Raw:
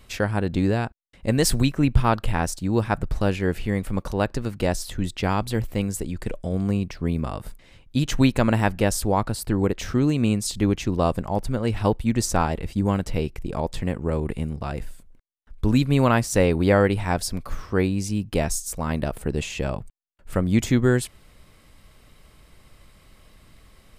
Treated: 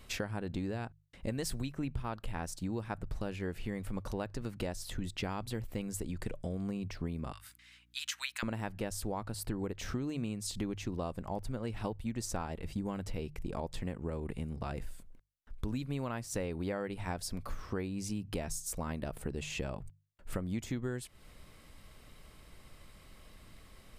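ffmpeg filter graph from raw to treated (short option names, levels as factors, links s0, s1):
-filter_complex "[0:a]asettb=1/sr,asplit=3[s0][s1][s2];[s0]atrim=end=7.324[s3];[s1]atrim=start=7.32:end=8.43,asetpts=PTS-STARTPTS,afade=t=in:d=0.004:c=qsin,afade=t=out:st=1.106:d=0.004:c=qsin,highpass=f=1400:w=0.5412,highpass=f=1400:w=1.3066,aeval=exprs='val(0)+0.000562*(sin(2*PI*60*n/s)+sin(2*PI*2*60*n/s)/2+sin(2*PI*3*60*n/s)/3+sin(2*PI*4*60*n/s)/4+sin(2*PI*5*60*n/s)/5)':c=same[s4];[s2]atrim=start=8.426[s5];[s3][s4]acrossfade=d=0.004:c1=hsin:c2=qsin[s6];[s6][s5]acrossfade=d=0.004:c1=qsin:c2=hsin,bandreject=f=50:t=h:w=6,bandreject=f=100:t=h:w=6,bandreject=f=150:t=h:w=6,acompressor=threshold=0.0282:ratio=6,volume=0.708"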